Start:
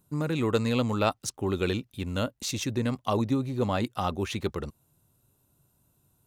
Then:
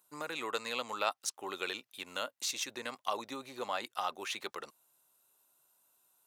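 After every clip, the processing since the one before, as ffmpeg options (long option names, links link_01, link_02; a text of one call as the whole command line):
ffmpeg -i in.wav -filter_complex "[0:a]highpass=790,asplit=2[link_01][link_02];[link_02]acompressor=threshold=-40dB:ratio=6,volume=0dB[link_03];[link_01][link_03]amix=inputs=2:normalize=0,volume=-5dB" out.wav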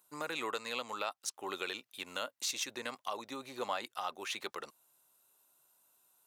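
ffmpeg -i in.wav -af "alimiter=limit=-23.5dB:level=0:latency=1:release=439,volume=1dB" out.wav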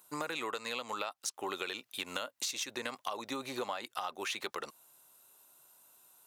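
ffmpeg -i in.wav -af "acompressor=threshold=-42dB:ratio=6,volume=8dB" out.wav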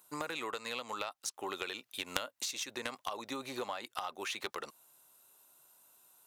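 ffmpeg -i in.wav -af "aeval=exprs='0.141*(cos(1*acos(clip(val(0)/0.141,-1,1)))-cos(1*PI/2))+0.0501*(cos(3*acos(clip(val(0)/0.141,-1,1)))-cos(3*PI/2))+0.0112*(cos(5*acos(clip(val(0)/0.141,-1,1)))-cos(5*PI/2))+0.00447*(cos(6*acos(clip(val(0)/0.141,-1,1)))-cos(6*PI/2))+0.00282*(cos(8*acos(clip(val(0)/0.141,-1,1)))-cos(8*PI/2))':channel_layout=same,volume=8dB" out.wav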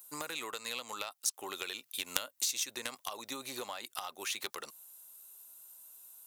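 ffmpeg -i in.wav -af "crystalizer=i=3:c=0,volume=-4dB" out.wav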